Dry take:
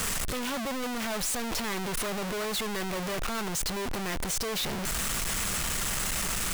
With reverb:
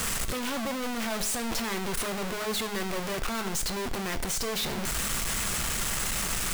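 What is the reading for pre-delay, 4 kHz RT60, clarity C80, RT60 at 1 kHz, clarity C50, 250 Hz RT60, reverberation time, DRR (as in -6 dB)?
4 ms, 0.50 s, 18.0 dB, 0.55 s, 14.5 dB, 0.55 s, 0.55 s, 9.0 dB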